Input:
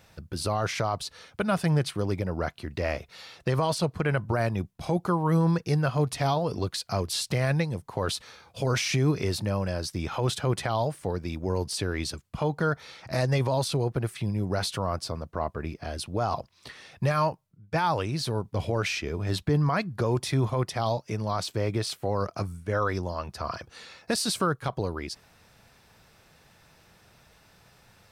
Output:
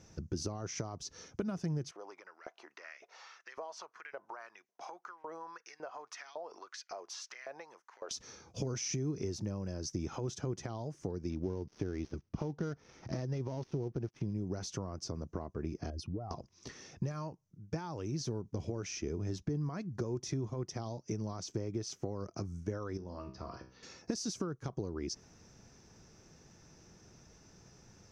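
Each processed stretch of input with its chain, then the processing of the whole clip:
1.91–8.11 s: tone controls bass -13 dB, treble -12 dB + compression 2.5:1, threshold -40 dBFS + LFO high-pass saw up 1.8 Hz 570–2200 Hz
11.30–14.34 s: dead-time distortion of 0.12 ms + Savitzky-Golay filter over 15 samples
15.90–16.31 s: spectral contrast enhancement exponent 1.8 + compression 4:1, threshold -35 dBFS
22.97–23.83 s: low-pass 4.6 kHz 24 dB/octave + feedback comb 64 Hz, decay 0.4 s, mix 80%
whole clip: compression 12:1, threshold -34 dBFS; FFT filter 110 Hz 0 dB, 360 Hz +5 dB, 560 Hz -5 dB, 4.1 kHz -11 dB, 6.1 kHz +8 dB, 8.6 kHz -16 dB, 13 kHz -20 dB

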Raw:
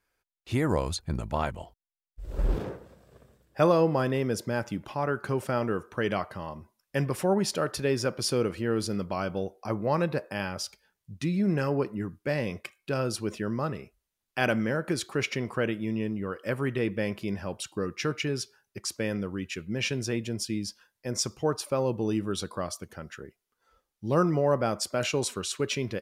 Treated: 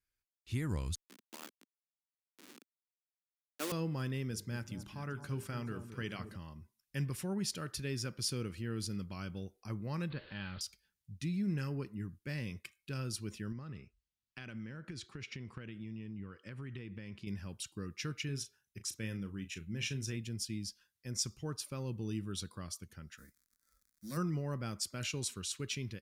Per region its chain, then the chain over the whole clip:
0.95–3.72 s: send-on-delta sampling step -23.5 dBFS + steep high-pass 250 Hz + upward expansion, over -36 dBFS
4.31–6.36 s: hum notches 50/100/150/200/250/300/350/400/450 Hz + echo whose repeats swap between lows and highs 215 ms, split 1.1 kHz, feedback 63%, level -10 dB
10.10–10.61 s: jump at every zero crossing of -35 dBFS + rippled Chebyshev low-pass 4.5 kHz, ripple 3 dB
13.52–17.27 s: high-pass 40 Hz + compression, threshold -30 dBFS + distance through air 85 m
18.25–20.17 s: band-stop 4.6 kHz, Q 6.8 + doubling 36 ms -11 dB
23.17–24.16 s: formants flattened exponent 0.6 + crackle 65 per s -45 dBFS + static phaser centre 580 Hz, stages 8
whole clip: amplifier tone stack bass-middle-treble 6-0-2; level rider gain up to 4.5 dB; trim +4.5 dB

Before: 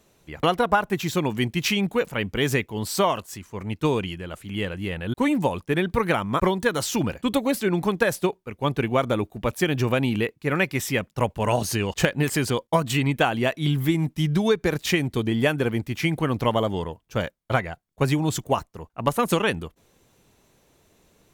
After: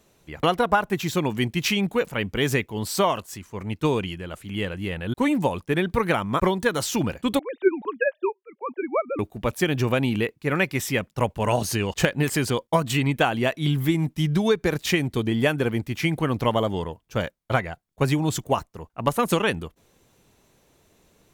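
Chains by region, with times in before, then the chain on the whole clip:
7.39–9.19 s: formants replaced by sine waves + upward expansion, over -28 dBFS
whole clip: none

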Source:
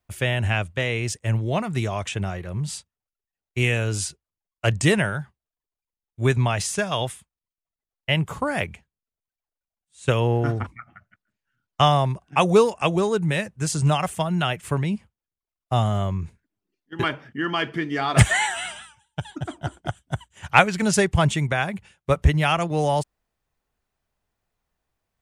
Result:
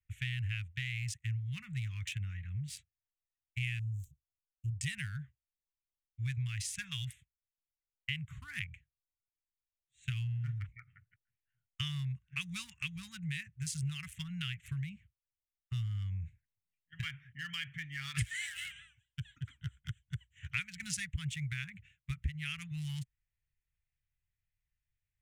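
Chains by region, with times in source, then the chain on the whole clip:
3.79–4.80 s: median filter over 9 samples + Chebyshev band-stop 250–9300 Hz
whole clip: local Wiener filter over 9 samples; elliptic band-stop 130–2000 Hz, stop band 80 dB; compression 3:1, threshold -31 dBFS; trim -5 dB

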